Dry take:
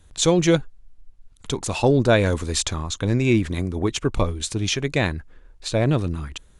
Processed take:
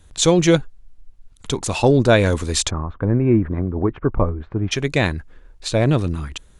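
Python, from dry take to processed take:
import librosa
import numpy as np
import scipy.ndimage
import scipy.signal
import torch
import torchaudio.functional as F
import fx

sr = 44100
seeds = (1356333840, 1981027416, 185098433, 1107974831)

y = fx.lowpass(x, sr, hz=1500.0, slope=24, at=(2.69, 4.71), fade=0.02)
y = y * 10.0 ** (3.0 / 20.0)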